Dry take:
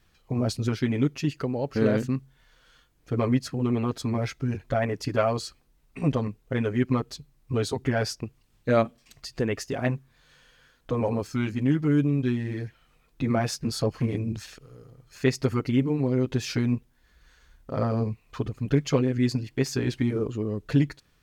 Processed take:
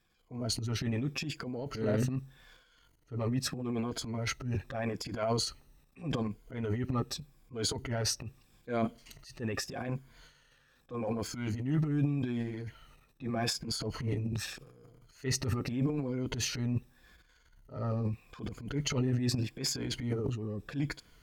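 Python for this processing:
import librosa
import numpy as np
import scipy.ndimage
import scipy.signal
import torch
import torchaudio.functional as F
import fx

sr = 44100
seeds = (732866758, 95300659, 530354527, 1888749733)

y = fx.spec_ripple(x, sr, per_octave=1.8, drift_hz=-0.82, depth_db=9)
y = fx.transient(y, sr, attack_db=-10, sustain_db=12)
y = y * librosa.db_to_amplitude(-9.0)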